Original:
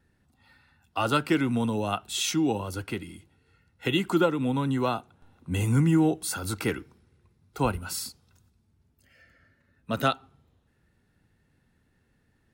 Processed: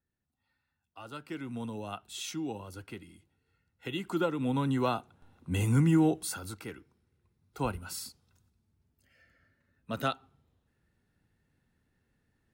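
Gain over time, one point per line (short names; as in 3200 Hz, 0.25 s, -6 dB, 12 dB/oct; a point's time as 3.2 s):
1.09 s -20 dB
1.62 s -11 dB
3.92 s -11 dB
4.56 s -2.5 dB
6.2 s -2.5 dB
6.67 s -14.5 dB
7.59 s -6.5 dB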